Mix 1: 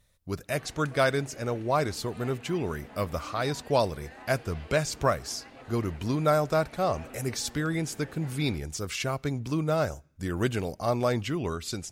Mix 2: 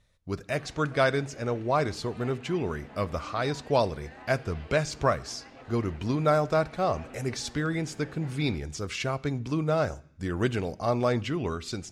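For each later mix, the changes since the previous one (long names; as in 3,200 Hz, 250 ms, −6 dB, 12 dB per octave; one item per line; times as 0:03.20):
speech: send +8.5 dB
master: add high-frequency loss of the air 61 metres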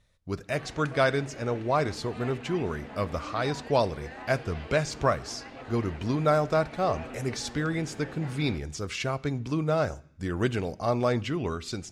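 background +5.5 dB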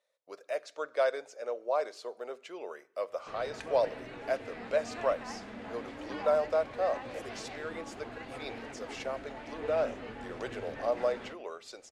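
speech: add four-pole ladder high-pass 480 Hz, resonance 60%
background: entry +2.75 s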